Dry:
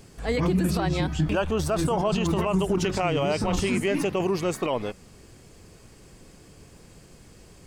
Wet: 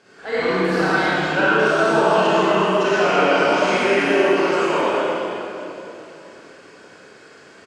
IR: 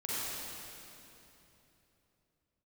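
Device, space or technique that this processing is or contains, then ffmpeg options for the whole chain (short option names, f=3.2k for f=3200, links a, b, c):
station announcement: -filter_complex "[0:a]highpass=380,lowpass=4.5k,equalizer=f=1.5k:t=o:w=0.3:g=12,aecho=1:1:32.07|113.7:0.562|0.355[a];[1:a]atrim=start_sample=2205[b];[a][b]afir=irnorm=-1:irlink=0,volume=3dB"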